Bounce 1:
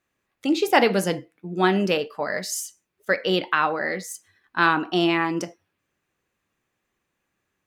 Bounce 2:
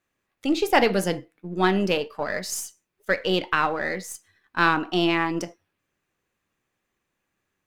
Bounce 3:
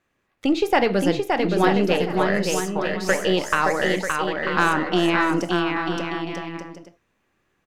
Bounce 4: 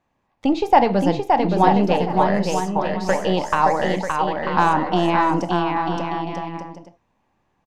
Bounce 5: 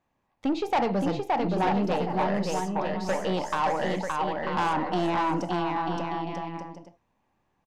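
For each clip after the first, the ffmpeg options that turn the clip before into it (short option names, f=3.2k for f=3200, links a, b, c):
-af "aeval=exprs='if(lt(val(0),0),0.708*val(0),val(0))':c=same"
-filter_complex "[0:a]acompressor=threshold=-27dB:ratio=2,aemphasis=mode=reproduction:type=cd,asplit=2[a][b];[b]aecho=0:1:570|940.5|1181|1338|1440:0.631|0.398|0.251|0.158|0.1[c];[a][c]amix=inputs=2:normalize=0,volume=7dB"
-af "firequalizer=gain_entry='entry(250,0);entry(370,-6);entry(890,7);entry(1300,-8);entry(5100,-6);entry(11000,-14)':delay=0.05:min_phase=1,volume=3.5dB"
-af "asoftclip=type=tanh:threshold=-14.5dB,volume=-5dB"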